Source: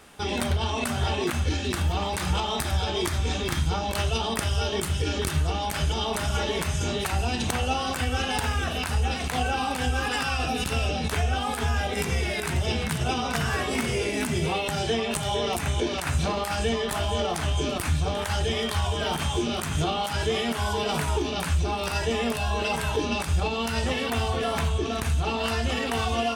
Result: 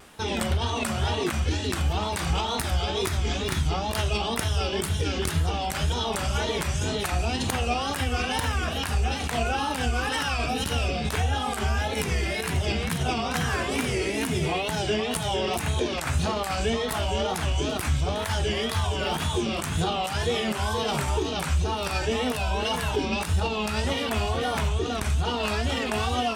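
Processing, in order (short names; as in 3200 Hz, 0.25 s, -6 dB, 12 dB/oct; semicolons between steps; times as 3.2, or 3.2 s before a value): reverse; upward compressor, threshold -34 dBFS; reverse; wow and flutter 130 cents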